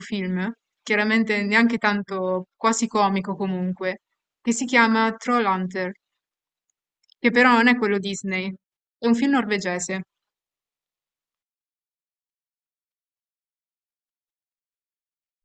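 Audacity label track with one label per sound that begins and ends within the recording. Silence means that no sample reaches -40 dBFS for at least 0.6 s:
7.120000	10.030000	sound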